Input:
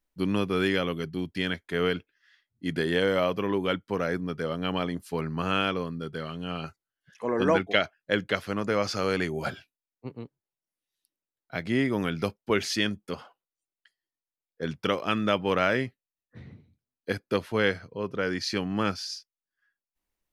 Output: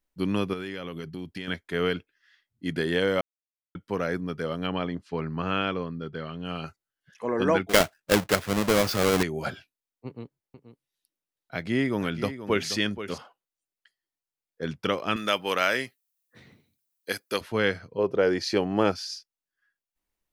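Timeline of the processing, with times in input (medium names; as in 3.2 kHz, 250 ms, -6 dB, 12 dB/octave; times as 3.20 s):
0.53–1.48 s: compression, threshold -31 dBFS
3.21–3.75 s: mute
4.67–6.45 s: distance through air 140 m
7.69–9.23 s: square wave that keeps the level
10.06–13.18 s: delay 479 ms -11.5 dB
15.16–17.41 s: RIAA curve recording
17.98–18.92 s: high-order bell 540 Hz +8.5 dB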